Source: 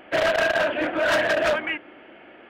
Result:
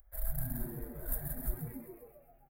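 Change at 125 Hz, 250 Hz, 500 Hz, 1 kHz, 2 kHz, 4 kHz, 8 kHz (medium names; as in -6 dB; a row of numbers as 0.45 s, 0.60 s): +3.0 dB, -13.0 dB, -28.5 dB, -29.0 dB, -34.5 dB, under -35 dB, -6.0 dB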